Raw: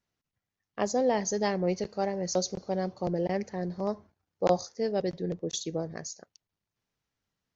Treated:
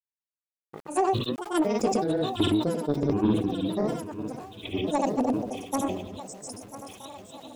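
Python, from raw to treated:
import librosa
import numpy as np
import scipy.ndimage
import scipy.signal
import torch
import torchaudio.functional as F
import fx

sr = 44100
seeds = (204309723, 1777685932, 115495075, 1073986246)

y = fx.reverse_delay(x, sr, ms=177, wet_db=-5.0)
y = fx.granulator(y, sr, seeds[0], grain_ms=262.0, per_s=3.5, spray_ms=100.0, spread_st=12)
y = fx.echo_swing(y, sr, ms=1236, ratio=3, feedback_pct=54, wet_db=-13.0)
y = fx.granulator(y, sr, seeds[1], grain_ms=100.0, per_s=20.0, spray_ms=100.0, spread_st=0)
y = fx.dynamic_eq(y, sr, hz=300.0, q=0.9, threshold_db=-48.0, ratio=4.0, max_db=8)
y = fx.fold_sine(y, sr, drive_db=5, ceiling_db=-10.0)
y = fx.high_shelf(y, sr, hz=4100.0, db=4.0)
y = np.where(np.abs(y) >= 10.0 ** (-48.5 / 20.0), y, 0.0)
y = fx.sustainer(y, sr, db_per_s=66.0)
y = y * 10.0 ** (-5.5 / 20.0)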